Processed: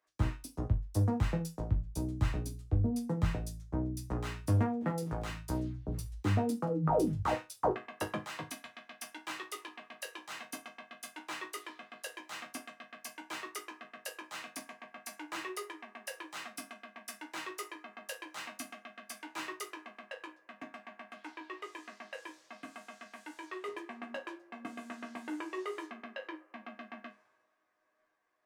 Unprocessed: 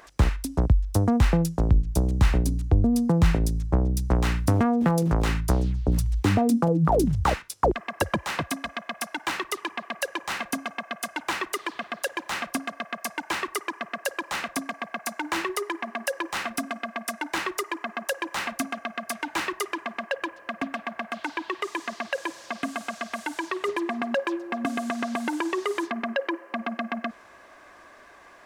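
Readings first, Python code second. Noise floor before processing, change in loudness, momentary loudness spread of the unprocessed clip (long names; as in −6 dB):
−51 dBFS, −11.0 dB, 11 LU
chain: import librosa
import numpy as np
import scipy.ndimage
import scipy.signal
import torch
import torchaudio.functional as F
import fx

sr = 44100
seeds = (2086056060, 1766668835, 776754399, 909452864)

y = fx.resonator_bank(x, sr, root=44, chord='minor', decay_s=0.26)
y = fx.band_widen(y, sr, depth_pct=70)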